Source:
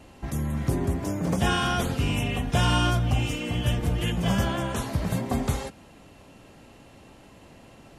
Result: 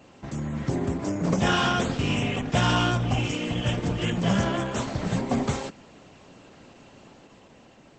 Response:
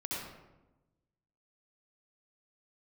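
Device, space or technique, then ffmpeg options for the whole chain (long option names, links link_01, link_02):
video call: -af "highpass=120,dynaudnorm=framelen=160:gausssize=11:maxgain=3dB" -ar 48000 -c:a libopus -b:a 12k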